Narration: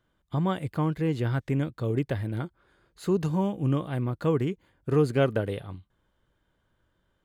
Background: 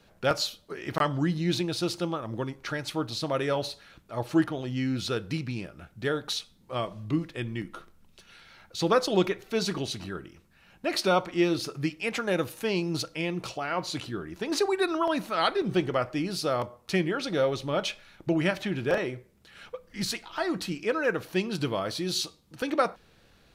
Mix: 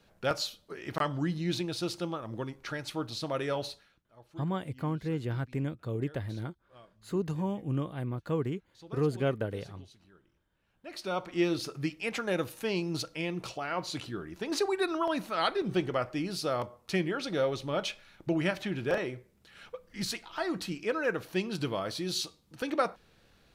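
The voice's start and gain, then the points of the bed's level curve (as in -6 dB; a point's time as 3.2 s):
4.05 s, -6.0 dB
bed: 3.73 s -4.5 dB
4.09 s -24.5 dB
10.56 s -24.5 dB
11.37 s -3.5 dB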